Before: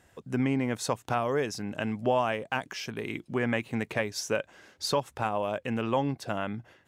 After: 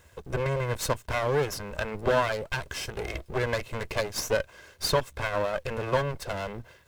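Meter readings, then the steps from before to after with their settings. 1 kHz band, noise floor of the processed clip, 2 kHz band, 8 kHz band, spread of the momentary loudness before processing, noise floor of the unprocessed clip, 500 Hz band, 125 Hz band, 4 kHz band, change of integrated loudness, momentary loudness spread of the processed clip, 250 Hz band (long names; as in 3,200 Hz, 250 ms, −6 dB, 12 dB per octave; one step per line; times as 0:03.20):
0.0 dB, −58 dBFS, +2.5 dB, +3.0 dB, 7 LU, −65 dBFS, +2.5 dB, +2.5 dB, +3.0 dB, +1.0 dB, 8 LU, −7.5 dB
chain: lower of the sound and its delayed copy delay 1.9 ms
bit-depth reduction 12 bits, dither none
parametric band 70 Hz +8.5 dB 0.8 octaves
level +4.5 dB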